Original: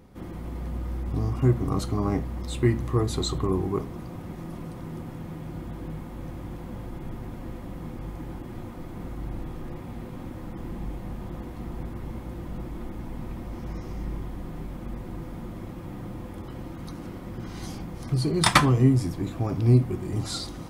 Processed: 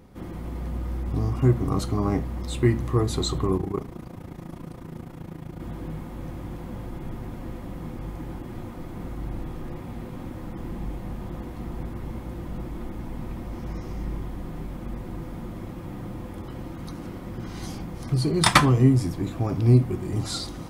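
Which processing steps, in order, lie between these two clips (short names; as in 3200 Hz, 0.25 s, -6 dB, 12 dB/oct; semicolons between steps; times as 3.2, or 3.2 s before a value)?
3.57–5.6 AM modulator 28 Hz, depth 65%; gain +1.5 dB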